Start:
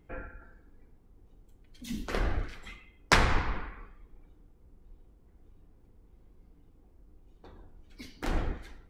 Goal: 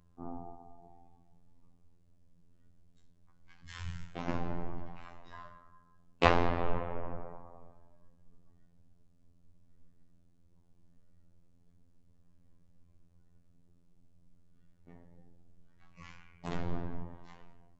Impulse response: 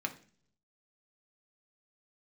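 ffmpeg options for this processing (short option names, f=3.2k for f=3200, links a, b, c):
-af "asetrate=22050,aresample=44100,afftfilt=real='hypot(re,im)*cos(PI*b)':imag='0':win_size=2048:overlap=0.75"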